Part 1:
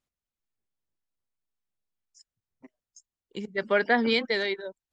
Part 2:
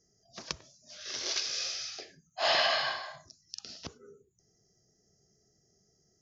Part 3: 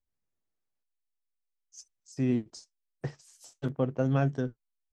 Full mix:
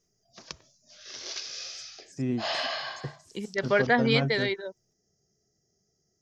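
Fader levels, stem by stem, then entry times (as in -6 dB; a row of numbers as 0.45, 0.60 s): 0.0, -4.0, -2.0 dB; 0.00, 0.00, 0.00 s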